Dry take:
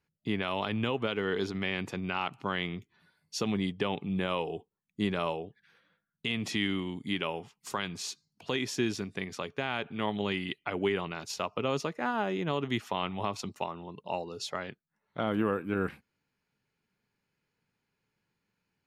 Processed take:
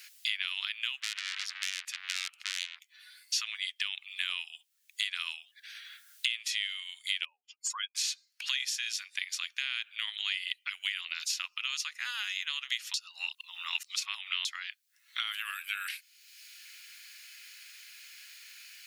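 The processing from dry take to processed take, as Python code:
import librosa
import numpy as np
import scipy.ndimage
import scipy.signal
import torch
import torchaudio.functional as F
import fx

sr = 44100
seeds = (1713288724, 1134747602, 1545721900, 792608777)

y = fx.transformer_sat(x, sr, knee_hz=3400.0, at=(1.0, 3.41))
y = fx.spec_expand(y, sr, power=3.1, at=(7.25, 7.95))
y = fx.edit(y, sr, fx.reverse_span(start_s=12.94, length_s=1.51), tone=tone)
y = scipy.signal.sosfilt(scipy.signal.bessel(6, 2900.0, 'highpass', norm='mag', fs=sr, output='sos'), y)
y = fx.band_squash(y, sr, depth_pct=100)
y = y * librosa.db_to_amplitude(8.5)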